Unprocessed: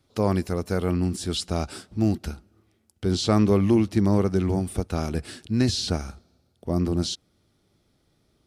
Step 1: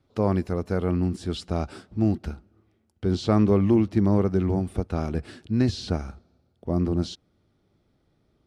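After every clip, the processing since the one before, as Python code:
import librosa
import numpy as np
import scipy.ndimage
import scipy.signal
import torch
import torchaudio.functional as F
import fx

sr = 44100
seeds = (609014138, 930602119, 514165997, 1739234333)

y = fx.lowpass(x, sr, hz=1800.0, slope=6)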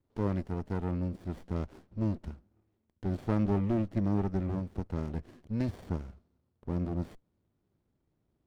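y = fx.running_max(x, sr, window=33)
y = y * librosa.db_to_amplitude(-9.0)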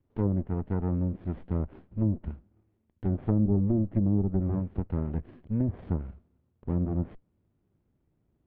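y = fx.env_lowpass_down(x, sr, base_hz=480.0, full_db=-25.0)
y = scipy.signal.sosfilt(scipy.signal.butter(4, 3200.0, 'lowpass', fs=sr, output='sos'), y)
y = fx.low_shelf(y, sr, hz=380.0, db=5.5)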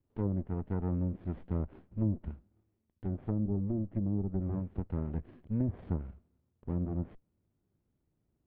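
y = fx.rider(x, sr, range_db=10, speed_s=2.0)
y = y * librosa.db_to_amplitude(-5.5)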